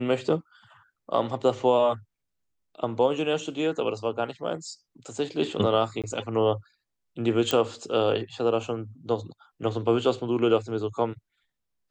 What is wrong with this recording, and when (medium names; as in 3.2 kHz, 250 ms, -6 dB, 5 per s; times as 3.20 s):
6.02–6.04 s: dropout 17 ms
7.51 s: pop -9 dBFS